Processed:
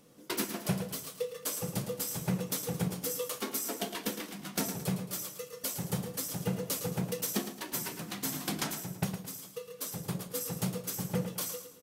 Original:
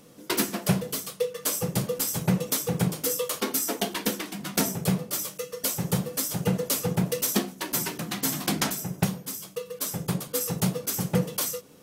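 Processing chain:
repeating echo 110 ms, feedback 36%, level −9.5 dB
level −8 dB

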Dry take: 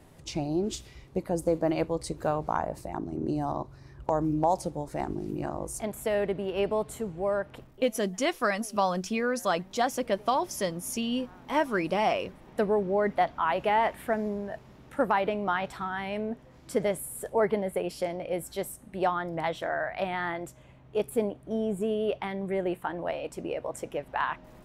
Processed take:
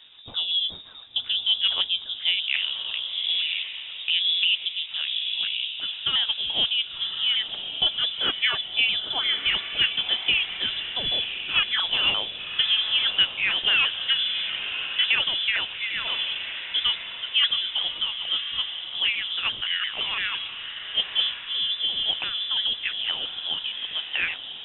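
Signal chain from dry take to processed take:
pitch shifter swept by a sawtooth +5 semitones, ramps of 171 ms
voice inversion scrambler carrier 3,700 Hz
feedback delay with all-pass diffusion 1,074 ms, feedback 43%, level −8 dB
level +4 dB

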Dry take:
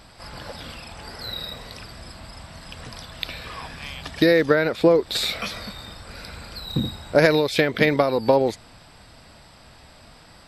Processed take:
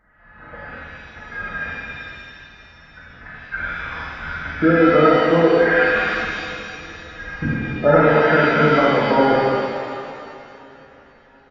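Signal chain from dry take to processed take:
hearing-aid frequency compression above 1,200 Hz 4 to 1
noise gate −34 dBFS, range −13 dB
tempo change 0.91×
on a send: repeating echo 721 ms, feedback 42%, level −22.5 dB
on the sum: reverb with rising layers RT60 2.1 s, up +7 semitones, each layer −8 dB, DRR −6.5 dB
level −3.5 dB

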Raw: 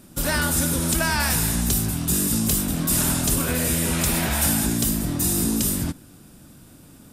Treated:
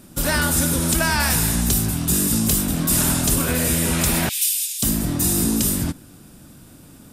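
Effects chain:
0:04.29–0:04.83: Butterworth high-pass 2,600 Hz 36 dB per octave
level +2.5 dB

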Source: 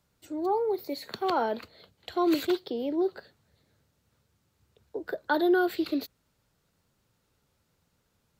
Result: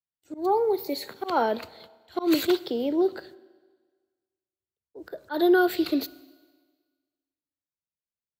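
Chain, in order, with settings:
noise gate −54 dBFS, range −38 dB
high-shelf EQ 5,500 Hz +4.5 dB
volume swells 133 ms
four-comb reverb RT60 1.5 s, combs from 26 ms, DRR 19 dB
level +4 dB

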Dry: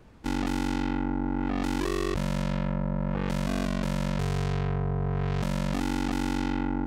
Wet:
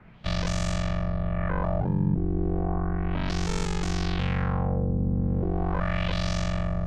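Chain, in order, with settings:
auto-filter low-pass sine 0.34 Hz 500–7,700 Hz
frequency shifter −220 Hz
level +1.5 dB

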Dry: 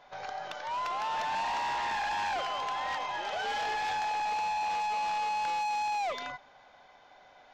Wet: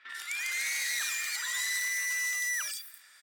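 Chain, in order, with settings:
spectral tilt +4 dB per octave
three-band delay without the direct sound lows, mids, highs 220/700 ms, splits 1,400/5,900 Hz
wrong playback speed 33 rpm record played at 78 rpm

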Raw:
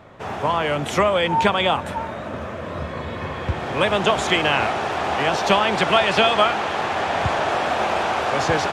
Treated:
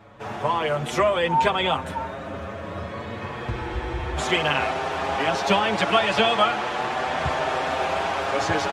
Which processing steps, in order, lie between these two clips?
frozen spectrum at 0:03.53, 0.63 s
barber-pole flanger 6.7 ms +0.34 Hz

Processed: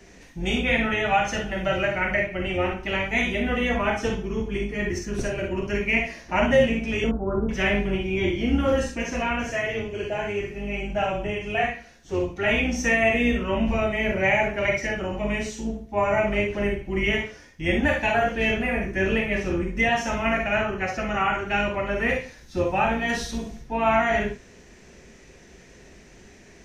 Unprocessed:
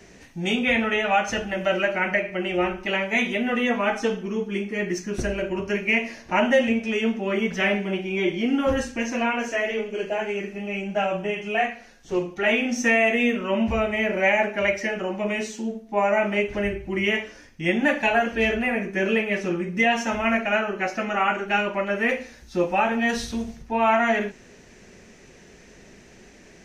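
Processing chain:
sub-octave generator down 2 octaves, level −2 dB
0:07.04–0:07.49: Butterworth low-pass 1,500 Hz 96 dB per octave
reverb whose tail is shaped and stops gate 80 ms rising, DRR 3 dB
level −2.5 dB

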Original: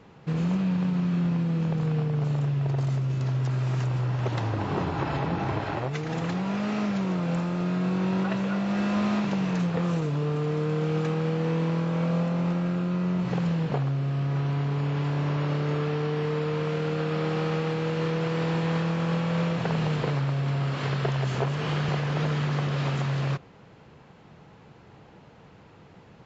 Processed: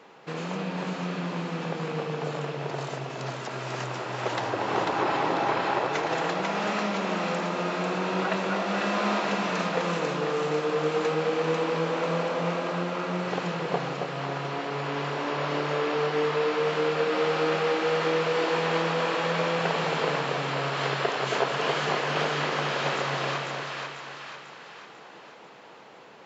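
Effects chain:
high-pass filter 420 Hz 12 dB per octave
on a send: echo with a time of its own for lows and highs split 850 Hz, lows 273 ms, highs 494 ms, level −3 dB
on the sum: level +4.5 dB

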